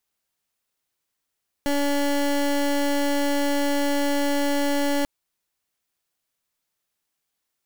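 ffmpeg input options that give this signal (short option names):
-f lavfi -i "aevalsrc='0.0794*(2*lt(mod(285*t,1),0.23)-1)':d=3.39:s=44100"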